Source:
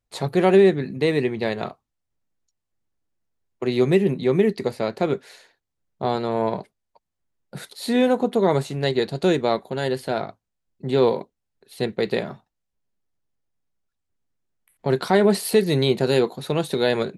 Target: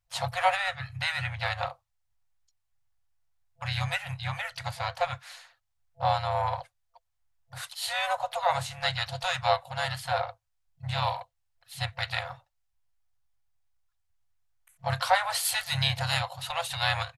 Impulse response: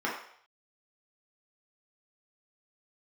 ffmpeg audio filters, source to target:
-filter_complex "[0:a]afftfilt=real='re*(1-between(b*sr/4096,130,670))':imag='im*(1-between(b*sr/4096,130,670))':win_size=4096:overlap=0.75,asplit=3[a][b][c];[b]asetrate=33038,aresample=44100,atempo=1.33484,volume=-7dB[d];[c]asetrate=55563,aresample=44100,atempo=0.793701,volume=-17dB[e];[a][d][e]amix=inputs=3:normalize=0"

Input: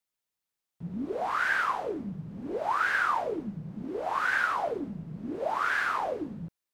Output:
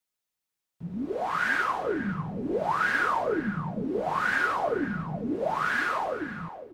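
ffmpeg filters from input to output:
-filter_complex "[0:a]acrossover=split=590|1200[a][b][c];[a]dynaudnorm=f=310:g=9:m=6dB[d];[c]aecho=1:1:5.5:0.57[e];[d][b][e]amix=inputs=3:normalize=0,asplit=2[f][g];[g]adelay=501.5,volume=-11dB,highshelf=f=4k:g=-11.3[h];[f][h]amix=inputs=2:normalize=0"

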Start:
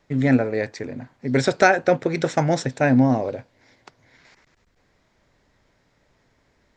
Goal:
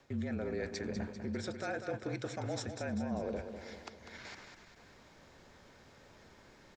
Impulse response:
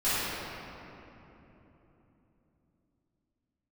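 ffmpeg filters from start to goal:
-filter_complex "[0:a]lowshelf=f=72:g=-10.5,bandreject=f=2k:w=13,areverse,acompressor=threshold=-31dB:ratio=6,areverse,alimiter=level_in=10.5dB:limit=-24dB:level=0:latency=1:release=261,volume=-10.5dB,afreqshift=-37,asplit=2[a][b];[b]aecho=0:1:197|394|591|788|985|1182:0.376|0.192|0.0978|0.0499|0.0254|0.013[c];[a][c]amix=inputs=2:normalize=0,volume=5.5dB"

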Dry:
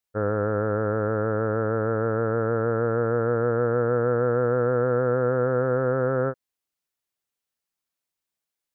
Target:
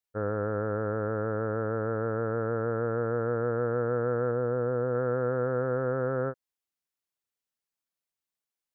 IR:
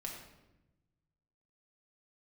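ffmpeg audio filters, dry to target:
-filter_complex "[0:a]asettb=1/sr,asplit=3[a][b][c];[a]atrim=end=4.314[d];[b]atrim=start=4.31:end=4.95,asetpts=PTS-STARTPTS,afade=t=in:d=0.004:c=qsin,afade=t=out:st=0.636:d=0.004:c=qsin,lowpass=f=1.3k:p=1[e];[c]atrim=start=4.946[f];[d][e]acrossfade=d=0.004:c1=hsin:c2=qsin[g];[g][f]acrossfade=d=0.004:c1=qsin:c2=hsin,volume=-5.5dB"

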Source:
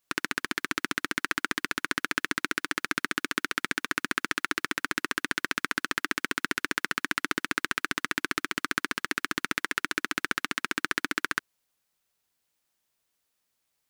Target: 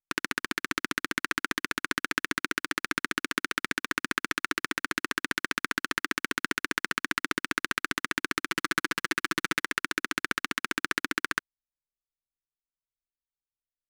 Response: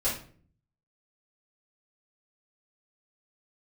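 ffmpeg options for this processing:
-filter_complex "[0:a]asettb=1/sr,asplit=3[a][b][c];[a]atrim=end=8.494[d];[b]atrim=start=8.49:end=9.61,asetpts=PTS-STARTPTS,afade=t=in:d=0.004:c=qsin,afade=t=out:st=1.116:d=0.004:c=qsin,aecho=1:1:6:0.67,atrim=end_sample=49392[e];[c]atrim=start=9.606[f];[d][e]acrossfade=d=0.004:c1=hsin:c2=qsin[g];[g][f]acrossfade=d=0.004:c1=qsin:c2=hsin,anlmdn=0.0158"

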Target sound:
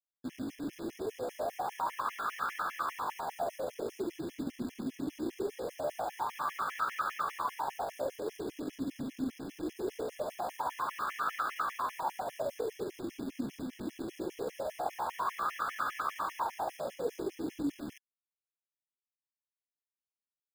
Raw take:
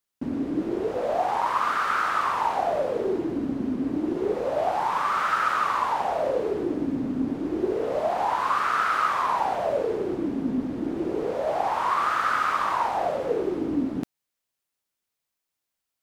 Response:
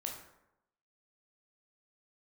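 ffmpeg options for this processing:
-af "acrusher=bits=7:dc=4:mix=0:aa=0.000001,atempo=0.78,afftfilt=real='re*gt(sin(2*PI*5*pts/sr)*(1-2*mod(floor(b*sr/1024/1700),2)),0)':imag='im*gt(sin(2*PI*5*pts/sr)*(1-2*mod(floor(b*sr/1024/1700),2)),0)':win_size=1024:overlap=0.75,volume=-8dB"

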